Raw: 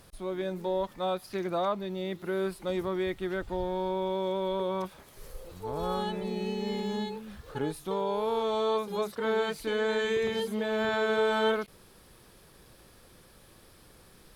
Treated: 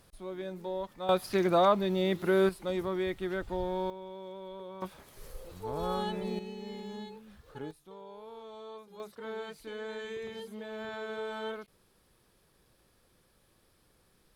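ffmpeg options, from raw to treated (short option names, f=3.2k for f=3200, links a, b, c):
-af "asetnsamples=n=441:p=0,asendcmd='1.09 volume volume 5.5dB;2.49 volume volume -1.5dB;3.9 volume volume -13.5dB;4.82 volume volume -1.5dB;6.39 volume volume -9.5dB;7.71 volume volume -18dB;9 volume volume -11.5dB',volume=-6dB"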